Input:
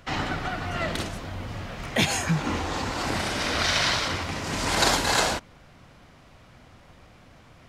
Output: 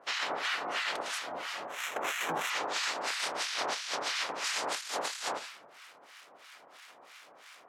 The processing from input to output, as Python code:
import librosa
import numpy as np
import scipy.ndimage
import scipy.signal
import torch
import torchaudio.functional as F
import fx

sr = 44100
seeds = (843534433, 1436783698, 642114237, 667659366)

p1 = fx.spec_clip(x, sr, under_db=15)
p2 = fx.sample_hold(p1, sr, seeds[0], rate_hz=4700.0, jitter_pct=0, at=(1.67, 2.5))
p3 = p2 + fx.echo_single(p2, sr, ms=84, db=-17.0, dry=0)
p4 = fx.dmg_crackle(p3, sr, seeds[1], per_s=530.0, level_db=-45.0)
p5 = scipy.signal.sosfilt(scipy.signal.butter(2, 580.0, 'highpass', fs=sr, output='sos'), p4)
p6 = fx.room_shoebox(p5, sr, seeds[2], volume_m3=380.0, walls='mixed', distance_m=0.31)
p7 = fx.harmonic_tremolo(p6, sr, hz=3.0, depth_pct=100, crossover_hz=1100.0)
p8 = fx.over_compress(p7, sr, threshold_db=-34.0, ratio=-1.0)
y = scipy.signal.sosfilt(scipy.signal.bessel(2, 11000.0, 'lowpass', norm='mag', fs=sr, output='sos'), p8)